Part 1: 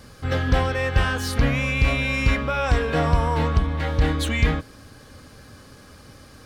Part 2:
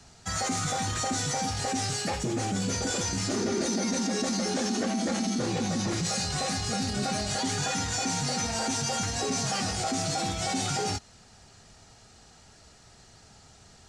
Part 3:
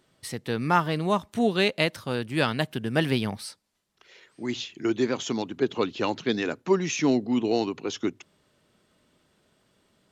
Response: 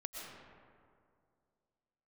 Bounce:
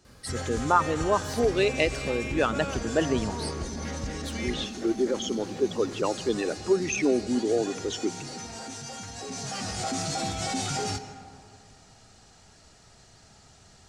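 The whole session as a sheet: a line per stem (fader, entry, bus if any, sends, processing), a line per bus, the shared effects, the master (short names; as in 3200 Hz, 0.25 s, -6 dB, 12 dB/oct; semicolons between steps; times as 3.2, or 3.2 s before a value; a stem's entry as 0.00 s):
-9.0 dB, 0.05 s, send -8.5 dB, compressor, threshold -24 dBFS, peak gain reduction 11.5 dB
9.12 s -12.5 dB -> 9.87 s -3.5 dB, 0.00 s, send -5 dB, dry
-0.5 dB, 0.00 s, send -13 dB, formant sharpening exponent 2; HPF 240 Hz 6 dB/oct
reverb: on, RT60 2.3 s, pre-delay 80 ms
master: dry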